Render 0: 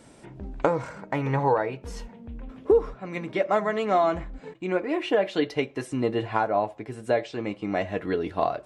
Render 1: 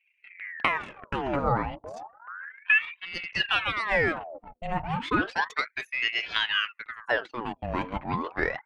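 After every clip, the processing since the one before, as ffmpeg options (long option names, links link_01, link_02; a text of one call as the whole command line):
ffmpeg -i in.wav -af "anlmdn=0.631,aeval=exprs='val(0)*sin(2*PI*1400*n/s+1400*0.75/0.32*sin(2*PI*0.32*n/s))':channel_layout=same" out.wav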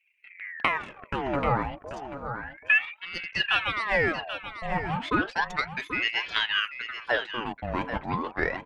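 ffmpeg -i in.wav -af "aecho=1:1:785:0.299" out.wav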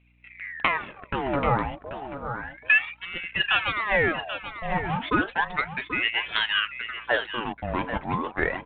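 ffmpeg -i in.wav -af "aeval=exprs='val(0)+0.000794*(sin(2*PI*60*n/s)+sin(2*PI*2*60*n/s)/2+sin(2*PI*3*60*n/s)/3+sin(2*PI*4*60*n/s)/4+sin(2*PI*5*60*n/s)/5)':channel_layout=same,volume=2dB" -ar 8000 -c:a adpcm_g726 -b:a 40k out.wav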